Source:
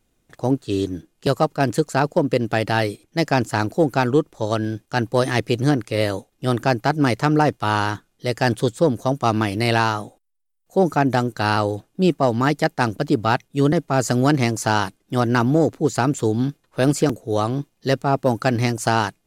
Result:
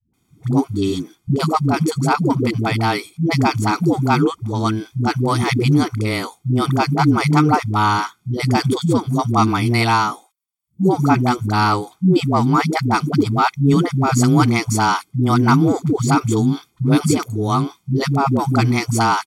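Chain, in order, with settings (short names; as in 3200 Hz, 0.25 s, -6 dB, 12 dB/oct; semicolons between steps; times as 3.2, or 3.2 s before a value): HPF 94 Hz; comb 0.9 ms, depth 79%; dispersion highs, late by 0.137 s, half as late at 310 Hz; gain +2 dB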